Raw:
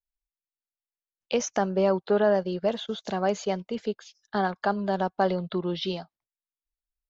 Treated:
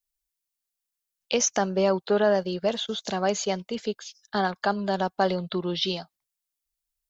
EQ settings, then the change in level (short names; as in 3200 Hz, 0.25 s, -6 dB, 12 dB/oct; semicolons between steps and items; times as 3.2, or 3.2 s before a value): high shelf 3300 Hz +12 dB; 0.0 dB